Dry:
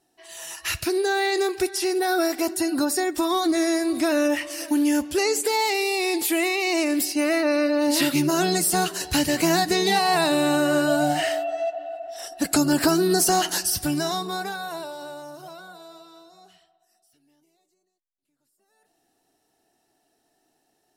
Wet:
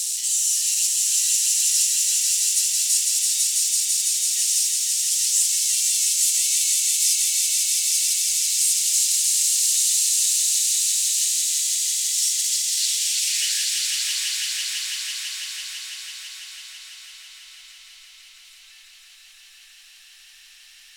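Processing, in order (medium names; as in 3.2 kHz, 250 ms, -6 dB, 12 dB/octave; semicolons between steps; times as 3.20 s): one-bit comparator; band-pass sweep 7.4 kHz -> 250 Hz, 12.34–15.26 s; inverse Chebyshev band-stop 100–530 Hz, stop band 80 dB; peaking EQ 180 Hz +14 dB 1.6 oct; on a send: echo with a slow build-up 166 ms, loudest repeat 5, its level -4 dB; on the sum: trim +8.5 dB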